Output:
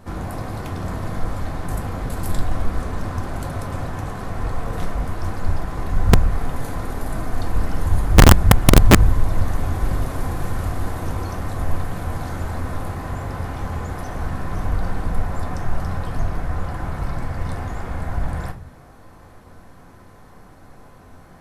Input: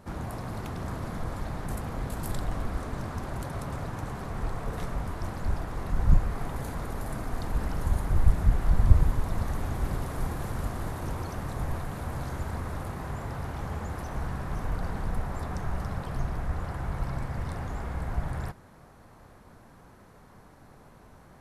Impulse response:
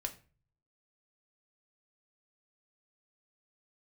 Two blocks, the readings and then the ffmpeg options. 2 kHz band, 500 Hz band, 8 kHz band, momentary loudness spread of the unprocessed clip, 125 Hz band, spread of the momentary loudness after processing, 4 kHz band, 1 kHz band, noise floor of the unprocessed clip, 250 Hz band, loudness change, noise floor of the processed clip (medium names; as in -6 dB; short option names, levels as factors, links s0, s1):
+12.5 dB, +11.0 dB, +16.0 dB, 9 LU, +9.0 dB, 15 LU, +17.0 dB, +9.5 dB, -53 dBFS, +11.5 dB, +9.5 dB, -45 dBFS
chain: -filter_complex "[1:a]atrim=start_sample=2205[s0];[0:a][s0]afir=irnorm=-1:irlink=0,aeval=exprs='(mod(2.99*val(0)+1,2)-1)/2.99':c=same,volume=2.24"